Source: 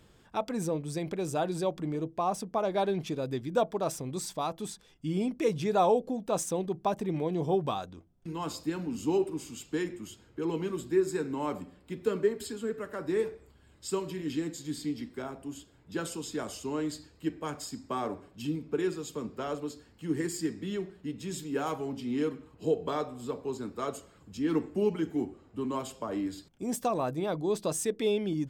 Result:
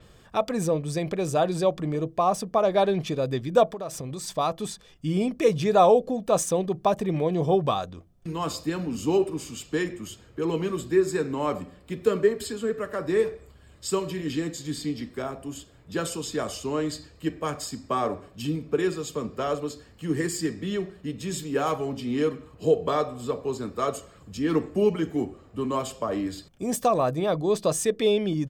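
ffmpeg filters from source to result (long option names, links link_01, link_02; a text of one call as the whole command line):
ffmpeg -i in.wav -filter_complex "[0:a]asettb=1/sr,asplit=3[link_01][link_02][link_03];[link_01]atrim=end=3.724[link_04];[link_02]atrim=start=3.72:end=4.28,asetpts=PTS-STARTPTS,afade=type=in:duration=0.004:curve=qsin,afade=type=out:start_time=0.556:duration=0.004:curve=qsin,acompressor=threshold=-36dB:ratio=12:attack=3.2:release=140:knee=1:detection=peak[link_05];[link_03]atrim=start=4.276[link_06];[link_04][link_05]acrossfade=duration=0.004:curve1=hsin:curve2=qsin[link_07];[link_07][link_06]acrossfade=duration=0.004:curve1=qsin:curve2=hsin,aecho=1:1:1.7:0.31,adynamicequalizer=threshold=0.00158:dfrequency=7400:dqfactor=0.7:tfrequency=7400:tqfactor=0.7:attack=5:release=100:ratio=0.375:range=2:mode=cutabove:tftype=highshelf,volume=6.5dB" out.wav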